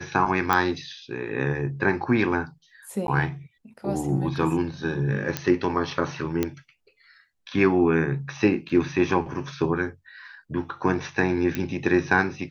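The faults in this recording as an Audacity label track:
0.530000	0.530000	pop -8 dBFS
3.070000	3.080000	dropout 11 ms
5.370000	5.370000	pop -9 dBFS
6.430000	6.430000	pop -10 dBFS
8.690000	8.700000	dropout 5.7 ms
11.550000	11.550000	pop -13 dBFS

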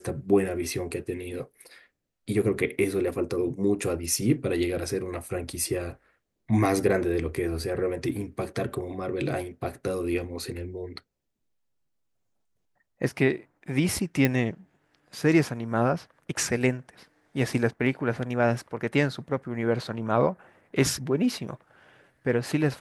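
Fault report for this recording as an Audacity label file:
14.250000	14.250000	pop -9 dBFS

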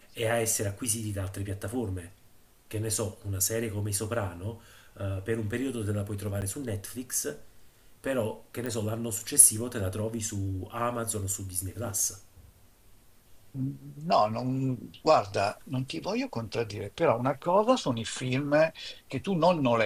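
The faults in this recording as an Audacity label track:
6.410000	6.420000	dropout 9.4 ms
8.660000	8.660000	pop

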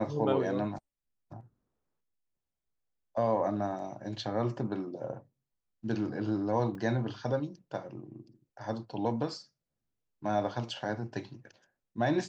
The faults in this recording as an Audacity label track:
6.750000	6.750000	dropout 2.1 ms

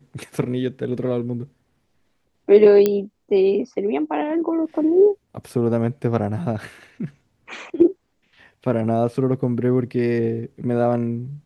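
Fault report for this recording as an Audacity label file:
2.860000	2.860000	pop -6 dBFS

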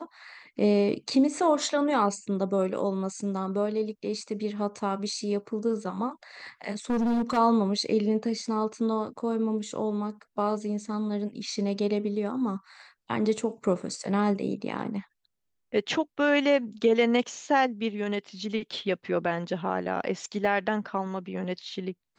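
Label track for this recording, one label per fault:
6.900000	7.380000	clipped -23 dBFS
20.450000	20.450000	dropout 2.1 ms

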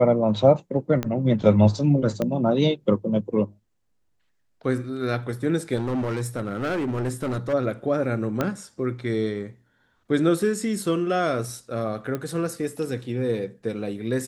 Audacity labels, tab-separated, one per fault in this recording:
1.030000	1.030000	pop -13 dBFS
2.220000	2.220000	pop -13 dBFS
5.760000	7.540000	clipped -22.5 dBFS
8.410000	8.410000	pop -10 dBFS
12.150000	12.150000	pop -16 dBFS

